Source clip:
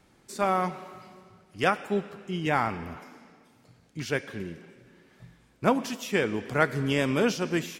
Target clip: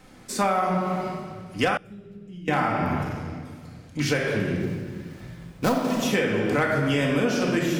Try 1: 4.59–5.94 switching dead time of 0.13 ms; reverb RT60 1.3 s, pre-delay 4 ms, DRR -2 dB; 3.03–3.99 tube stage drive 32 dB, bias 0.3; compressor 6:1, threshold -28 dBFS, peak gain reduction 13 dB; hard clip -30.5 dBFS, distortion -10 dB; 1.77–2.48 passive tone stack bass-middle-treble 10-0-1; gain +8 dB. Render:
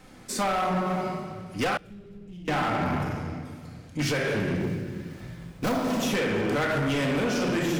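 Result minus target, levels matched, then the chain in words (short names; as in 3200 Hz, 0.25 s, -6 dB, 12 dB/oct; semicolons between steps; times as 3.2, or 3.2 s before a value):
hard clip: distortion +22 dB
4.59–5.94 switching dead time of 0.13 ms; reverb RT60 1.3 s, pre-delay 4 ms, DRR -2 dB; 3.03–3.99 tube stage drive 32 dB, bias 0.3; compressor 6:1, threshold -28 dBFS, peak gain reduction 13 dB; hard clip -20 dBFS, distortion -33 dB; 1.77–2.48 passive tone stack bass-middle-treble 10-0-1; gain +8 dB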